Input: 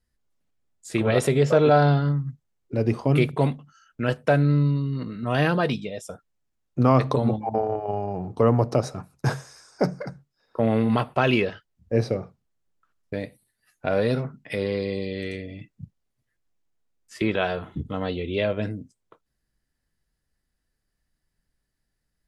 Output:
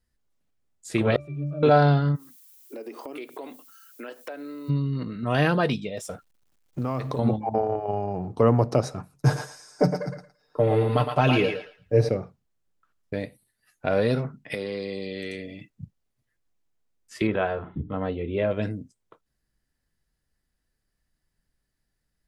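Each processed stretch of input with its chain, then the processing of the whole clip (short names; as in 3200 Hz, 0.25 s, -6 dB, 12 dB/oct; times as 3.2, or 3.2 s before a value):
1.16–1.63 switching spikes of -19 dBFS + octave resonator D, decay 0.42 s
2.15–4.68 steep high-pass 270 Hz + added noise violet -53 dBFS + compressor 5:1, threshold -35 dBFS
5.97–7.19 G.711 law mismatch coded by mu + compressor 3:1, threshold -27 dBFS
9.14–12.09 bell 2000 Hz -4.5 dB 2.6 oct + comb 6.7 ms, depth 81% + thinning echo 0.112 s, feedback 23%, high-pass 610 Hz, level -4.5 dB
14.54–15.7 HPF 150 Hz + high shelf 4200 Hz +5.5 dB + compressor 2:1, threshold -30 dBFS
17.27–18.51 LPF 1800 Hz + notches 60/120/180/240/300/360/420/480 Hz
whole clip: dry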